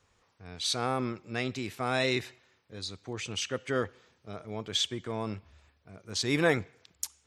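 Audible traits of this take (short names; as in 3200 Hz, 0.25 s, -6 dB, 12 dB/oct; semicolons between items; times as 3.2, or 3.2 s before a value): noise floor -70 dBFS; spectral tilt -3.5 dB/oct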